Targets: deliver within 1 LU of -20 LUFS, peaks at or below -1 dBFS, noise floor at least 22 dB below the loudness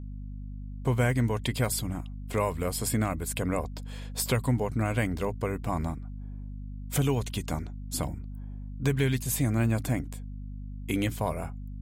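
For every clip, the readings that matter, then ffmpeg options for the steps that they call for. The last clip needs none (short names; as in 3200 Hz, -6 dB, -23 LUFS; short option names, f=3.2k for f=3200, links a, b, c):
hum 50 Hz; harmonics up to 250 Hz; hum level -36 dBFS; loudness -30.0 LUFS; peak -15.0 dBFS; loudness target -20.0 LUFS
-> -af "bandreject=f=50:t=h:w=4,bandreject=f=100:t=h:w=4,bandreject=f=150:t=h:w=4,bandreject=f=200:t=h:w=4,bandreject=f=250:t=h:w=4"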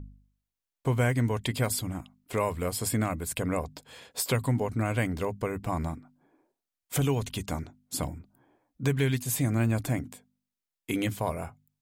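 hum none; loudness -30.0 LUFS; peak -15.0 dBFS; loudness target -20.0 LUFS
-> -af "volume=10dB"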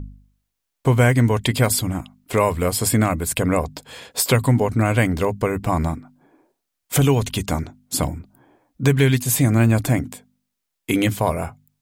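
loudness -20.0 LUFS; peak -5.0 dBFS; noise floor -79 dBFS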